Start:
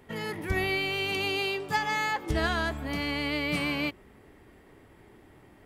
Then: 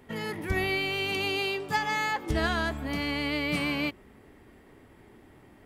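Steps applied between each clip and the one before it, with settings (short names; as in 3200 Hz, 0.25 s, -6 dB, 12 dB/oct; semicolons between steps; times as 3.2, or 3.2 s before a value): bell 240 Hz +4 dB 0.31 oct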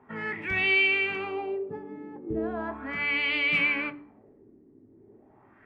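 LFO low-pass sine 0.37 Hz 320–2900 Hz; reverb RT60 0.40 s, pre-delay 3 ms, DRR 11 dB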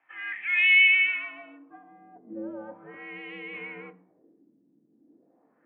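band-pass sweep 2500 Hz -> 480 Hz, 1.08–2.52; mistuned SSB -110 Hz 340–3500 Hz; high shelf 2100 Hz +11 dB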